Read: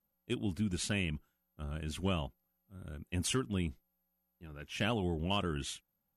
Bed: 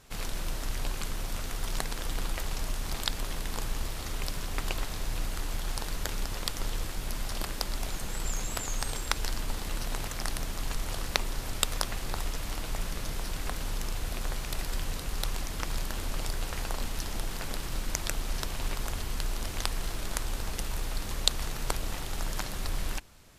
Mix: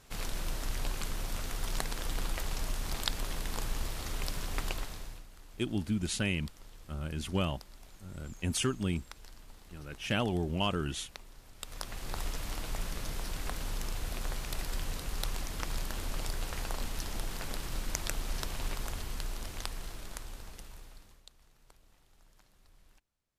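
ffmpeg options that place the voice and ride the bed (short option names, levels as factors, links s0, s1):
-filter_complex "[0:a]adelay=5300,volume=1.33[s0];[1:a]volume=5.62,afade=t=out:st=4.6:d=0.64:silence=0.125893,afade=t=in:st=11.57:d=0.67:silence=0.141254,afade=t=out:st=18.58:d=2.65:silence=0.0421697[s1];[s0][s1]amix=inputs=2:normalize=0"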